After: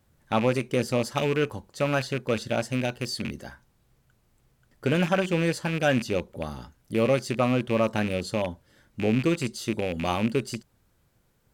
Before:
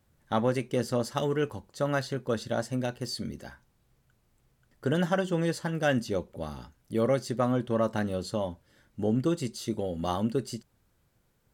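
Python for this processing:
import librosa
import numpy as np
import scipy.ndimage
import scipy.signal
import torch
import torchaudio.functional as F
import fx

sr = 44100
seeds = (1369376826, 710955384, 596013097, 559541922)

y = fx.rattle_buzz(x, sr, strikes_db=-35.0, level_db=-26.0)
y = F.gain(torch.from_numpy(y), 3.0).numpy()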